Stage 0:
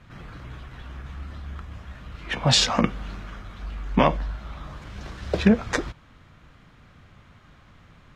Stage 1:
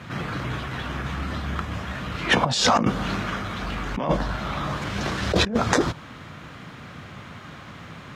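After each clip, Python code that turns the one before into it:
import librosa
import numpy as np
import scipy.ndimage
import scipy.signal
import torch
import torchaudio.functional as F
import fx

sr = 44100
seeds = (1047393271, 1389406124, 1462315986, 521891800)

y = scipy.signal.sosfilt(scipy.signal.butter(2, 120.0, 'highpass', fs=sr, output='sos'), x)
y = fx.dynamic_eq(y, sr, hz=2300.0, q=1.4, threshold_db=-43.0, ratio=4.0, max_db=-7)
y = fx.over_compress(y, sr, threshold_db=-29.0, ratio=-1.0)
y = F.gain(torch.from_numpy(y), 8.5).numpy()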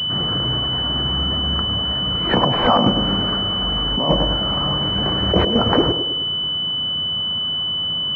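y = fx.echo_banded(x, sr, ms=105, feedback_pct=54, hz=400.0, wet_db=-5.5)
y = fx.pwm(y, sr, carrier_hz=3000.0)
y = F.gain(torch.from_numpy(y), 4.5).numpy()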